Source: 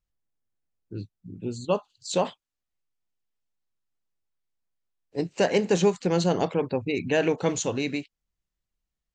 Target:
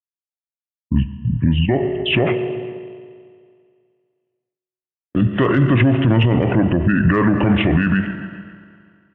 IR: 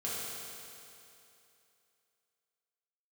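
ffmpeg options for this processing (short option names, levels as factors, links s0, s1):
-filter_complex "[0:a]agate=range=0.00562:threshold=0.00355:ratio=16:detection=peak,acontrast=64,highpass=150,aecho=1:1:134|268|402|536:0.0708|0.0418|0.0246|0.0145,asplit=2[s0][s1];[s1]acompressor=threshold=0.0501:ratio=4,volume=0.891[s2];[s0][s2]amix=inputs=2:normalize=0,equalizer=f=520:t=o:w=1.8:g=-8,aresample=11025,aresample=44100,aeval=exprs='0.376*(cos(1*acos(clip(val(0)/0.376,-1,1)))-cos(1*PI/2))+0.00473*(cos(2*acos(clip(val(0)/0.376,-1,1)))-cos(2*PI/2))+0.0168*(cos(3*acos(clip(val(0)/0.376,-1,1)))-cos(3*PI/2))':c=same,aemphasis=mode=reproduction:type=75kf,asplit=2[s3][s4];[1:a]atrim=start_sample=2205,asetrate=57330,aresample=44100[s5];[s4][s5]afir=irnorm=-1:irlink=0,volume=0.2[s6];[s3][s6]amix=inputs=2:normalize=0,asetrate=29433,aresample=44100,atempo=1.49831,alimiter=level_in=10.6:limit=0.891:release=50:level=0:latency=1,volume=0.531"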